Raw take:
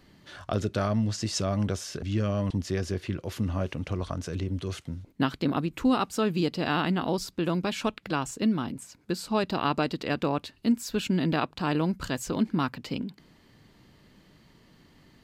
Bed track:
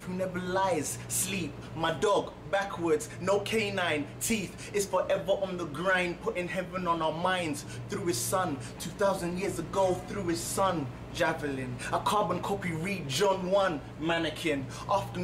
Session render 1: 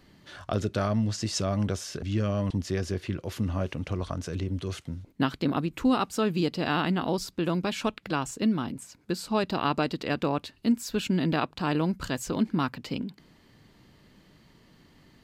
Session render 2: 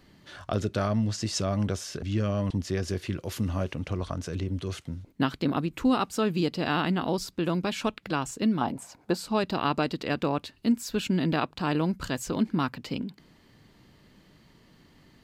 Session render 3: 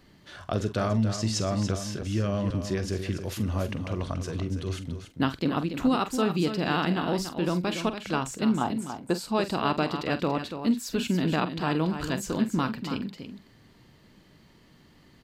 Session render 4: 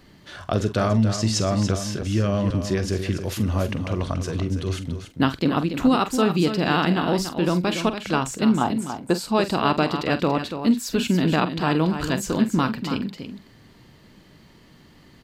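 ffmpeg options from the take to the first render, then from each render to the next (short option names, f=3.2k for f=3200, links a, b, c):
-af anull
-filter_complex "[0:a]asettb=1/sr,asplit=3[a][b][c];[a]atrim=end=2.884[d];[b]atrim=start=2.88:end=3.64,asetpts=PTS-STARTPTS,afade=t=in:d=0.004:c=qsin,afade=t=out:st=0.756:d=0.004:c=qsin,highshelf=f=5k:g=7[e];[c]atrim=start=3.636[f];[d][e]acrossfade=d=0.004:c1=hsin:c2=qsin[g];[g][f]acrossfade=d=0.004:c1=qsin:c2=hsin,asettb=1/sr,asplit=3[h][i][j];[h]atrim=end=8.614[k];[i]atrim=start=8.61:end=9.17,asetpts=PTS-STARTPTS,afade=t=in:d=0.004:c=qsin,afade=t=out:st=0.556:d=0.004:c=qsin,equalizer=f=760:w=1.2:g=15[l];[j]atrim=start=9.166[m];[k][l]acrossfade=d=0.004:c1=hsin:c2=qsin[n];[n][m]acrossfade=d=0.004:c1=qsin:c2=hsin"
-filter_complex "[0:a]asplit=2[a][b];[b]adelay=45,volume=-12.5dB[c];[a][c]amix=inputs=2:normalize=0,asplit=2[d][e];[e]aecho=0:1:285:0.355[f];[d][f]amix=inputs=2:normalize=0"
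-af "volume=5.5dB"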